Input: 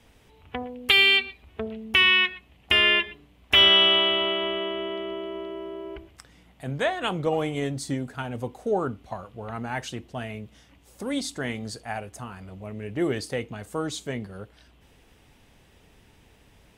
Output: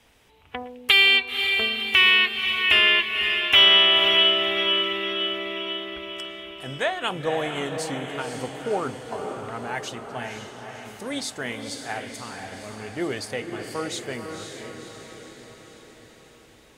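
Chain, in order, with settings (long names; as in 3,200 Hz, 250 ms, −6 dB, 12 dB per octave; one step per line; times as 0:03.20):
0:01.72–0:02.19: one scale factor per block 7 bits
low-shelf EQ 390 Hz −9 dB
feedback delay with all-pass diffusion 525 ms, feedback 59%, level −6 dB
level +2 dB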